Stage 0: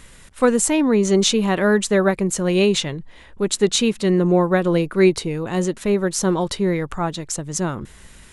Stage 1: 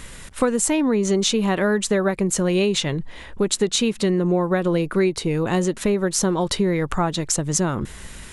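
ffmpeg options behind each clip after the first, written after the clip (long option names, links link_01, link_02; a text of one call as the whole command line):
ffmpeg -i in.wav -af "acompressor=threshold=-24dB:ratio=5,volume=6.5dB" out.wav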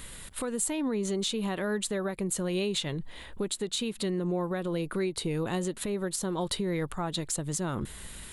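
ffmpeg -i in.wav -af "alimiter=limit=-15.5dB:level=0:latency=1:release=204,aexciter=amount=1.4:drive=4.6:freq=3200,volume=-7dB" out.wav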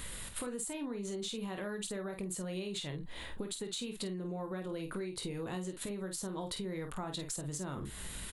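ffmpeg -i in.wav -filter_complex "[0:a]asplit=2[link_01][link_02];[link_02]aecho=0:1:21|49:0.355|0.422[link_03];[link_01][link_03]amix=inputs=2:normalize=0,acompressor=threshold=-37dB:ratio=6" out.wav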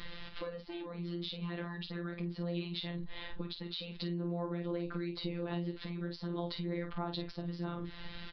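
ffmpeg -i in.wav -af "aresample=11025,aresample=44100,afftfilt=real='hypot(re,im)*cos(PI*b)':imag='0':win_size=1024:overlap=0.75,volume=3.5dB" out.wav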